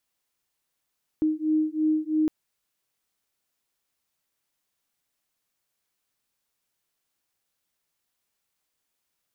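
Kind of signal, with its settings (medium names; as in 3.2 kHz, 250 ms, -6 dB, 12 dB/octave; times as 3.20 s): beating tones 309 Hz, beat 3 Hz, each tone -24.5 dBFS 1.06 s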